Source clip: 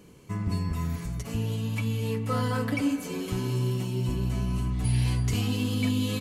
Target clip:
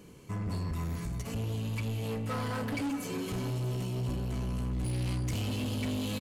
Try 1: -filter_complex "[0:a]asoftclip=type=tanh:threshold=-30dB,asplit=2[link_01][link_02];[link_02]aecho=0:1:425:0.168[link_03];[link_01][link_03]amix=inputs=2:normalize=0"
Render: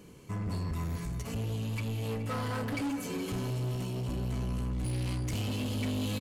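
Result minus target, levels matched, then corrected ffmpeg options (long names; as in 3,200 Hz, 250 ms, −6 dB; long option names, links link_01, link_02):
echo 207 ms early
-filter_complex "[0:a]asoftclip=type=tanh:threshold=-30dB,asplit=2[link_01][link_02];[link_02]aecho=0:1:632:0.168[link_03];[link_01][link_03]amix=inputs=2:normalize=0"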